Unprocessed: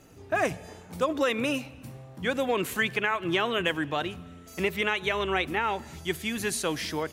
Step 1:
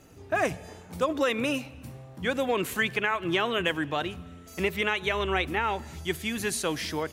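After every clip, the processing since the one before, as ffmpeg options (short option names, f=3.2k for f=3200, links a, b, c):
-af "equalizer=f=75:w=6.4:g=7"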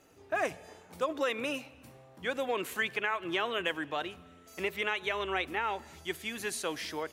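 -af "bass=f=250:g=-11,treble=f=4k:g=-2,volume=-4.5dB"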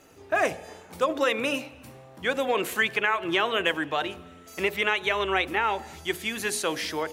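-af "bandreject=f=59.61:t=h:w=4,bandreject=f=119.22:t=h:w=4,bandreject=f=178.83:t=h:w=4,bandreject=f=238.44:t=h:w=4,bandreject=f=298.05:t=h:w=4,bandreject=f=357.66:t=h:w=4,bandreject=f=417.27:t=h:w=4,bandreject=f=476.88:t=h:w=4,bandreject=f=536.49:t=h:w=4,bandreject=f=596.1:t=h:w=4,bandreject=f=655.71:t=h:w=4,bandreject=f=715.32:t=h:w=4,bandreject=f=774.93:t=h:w=4,bandreject=f=834.54:t=h:w=4,bandreject=f=894.15:t=h:w=4,volume=7.5dB"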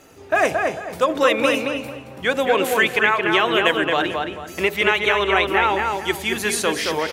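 -filter_complex "[0:a]asplit=2[a][b];[b]adelay=222,lowpass=f=2.7k:p=1,volume=-3dB,asplit=2[c][d];[d]adelay=222,lowpass=f=2.7k:p=1,volume=0.32,asplit=2[e][f];[f]adelay=222,lowpass=f=2.7k:p=1,volume=0.32,asplit=2[g][h];[h]adelay=222,lowpass=f=2.7k:p=1,volume=0.32[i];[a][c][e][g][i]amix=inputs=5:normalize=0,volume=6dB"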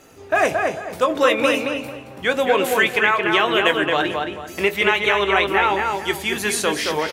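-filter_complex "[0:a]asplit=2[a][b];[b]adelay=20,volume=-11dB[c];[a][c]amix=inputs=2:normalize=0"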